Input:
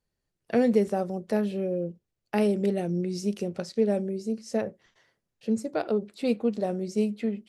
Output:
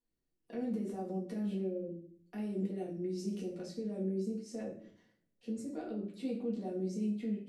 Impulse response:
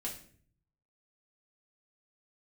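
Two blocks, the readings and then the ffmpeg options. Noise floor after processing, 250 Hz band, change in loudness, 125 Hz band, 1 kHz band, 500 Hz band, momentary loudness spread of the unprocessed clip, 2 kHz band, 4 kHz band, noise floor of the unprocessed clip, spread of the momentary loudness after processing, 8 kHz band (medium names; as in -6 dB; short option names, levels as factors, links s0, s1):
-82 dBFS, -8.5 dB, -10.5 dB, -8.0 dB, -14.5 dB, -13.0 dB, 7 LU, -17.0 dB, -12.5 dB, -83 dBFS, 8 LU, -10.0 dB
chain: -filter_complex "[0:a]equalizer=f=320:t=o:w=0.55:g=12,alimiter=limit=0.0668:level=0:latency=1:release=34[s0];[1:a]atrim=start_sample=2205[s1];[s0][s1]afir=irnorm=-1:irlink=0,volume=0.355"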